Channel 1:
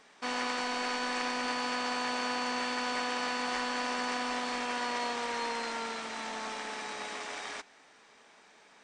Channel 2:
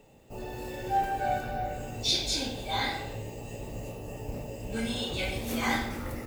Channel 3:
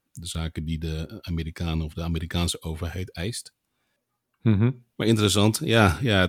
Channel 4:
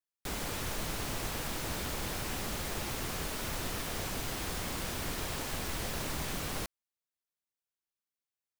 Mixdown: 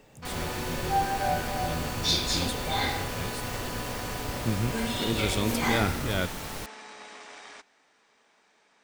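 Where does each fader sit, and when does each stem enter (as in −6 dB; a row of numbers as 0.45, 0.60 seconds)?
−6.0, +1.0, −9.0, −1.0 decibels; 0.00, 0.00, 0.00, 0.00 seconds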